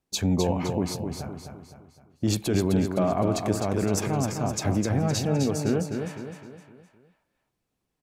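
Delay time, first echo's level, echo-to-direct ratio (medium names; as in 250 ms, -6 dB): 257 ms, -6.0 dB, -5.0 dB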